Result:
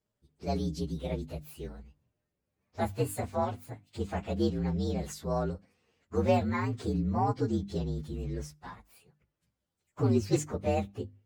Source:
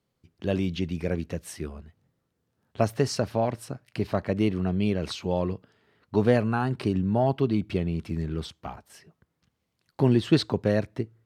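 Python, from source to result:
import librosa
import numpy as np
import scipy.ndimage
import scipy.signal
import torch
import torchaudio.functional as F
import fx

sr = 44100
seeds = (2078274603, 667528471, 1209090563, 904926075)

y = fx.partial_stretch(x, sr, pct=119)
y = fx.hum_notches(y, sr, base_hz=50, count=6)
y = y * librosa.db_to_amplitude(-3.0)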